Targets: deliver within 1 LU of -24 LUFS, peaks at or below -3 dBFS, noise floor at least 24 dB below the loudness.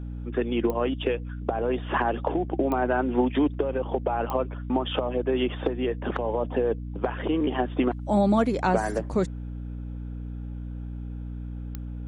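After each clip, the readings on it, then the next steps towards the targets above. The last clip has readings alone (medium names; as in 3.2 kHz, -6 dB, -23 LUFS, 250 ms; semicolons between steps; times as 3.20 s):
clicks found 4; hum 60 Hz; highest harmonic 300 Hz; hum level -32 dBFS; loudness -27.5 LUFS; peak level -7.5 dBFS; loudness target -24.0 LUFS
-> de-click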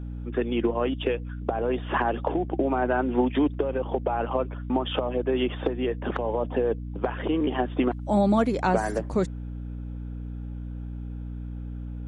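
clicks found 0; hum 60 Hz; highest harmonic 300 Hz; hum level -32 dBFS
-> de-hum 60 Hz, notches 5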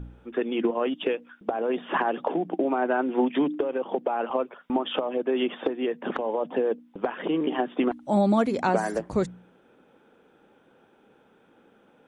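hum not found; loudness -27.0 LUFS; peak level -9.0 dBFS; loudness target -24.0 LUFS
-> trim +3 dB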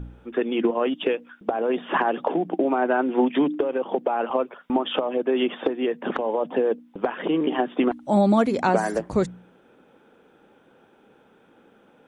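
loudness -24.0 LUFS; peak level -6.0 dBFS; noise floor -57 dBFS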